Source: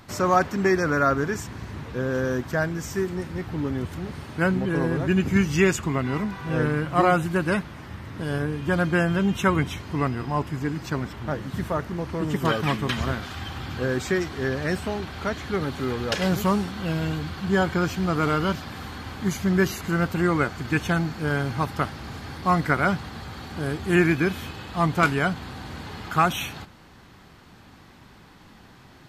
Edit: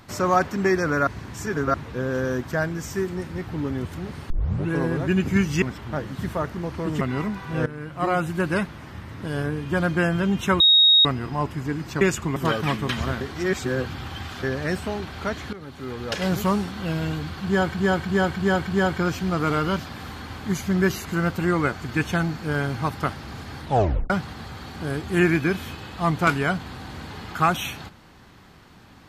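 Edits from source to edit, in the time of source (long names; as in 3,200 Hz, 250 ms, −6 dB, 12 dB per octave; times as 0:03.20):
0:01.07–0:01.74: reverse
0:04.30: tape start 0.42 s
0:05.62–0:05.97: swap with 0:10.97–0:12.36
0:06.62–0:07.40: fade in, from −15.5 dB
0:09.56–0:10.01: beep over 3,760 Hz −11.5 dBFS
0:13.21–0:14.43: reverse
0:15.53–0:16.36: fade in, from −16.5 dB
0:17.44–0:17.75: repeat, 5 plays
0:22.37: tape stop 0.49 s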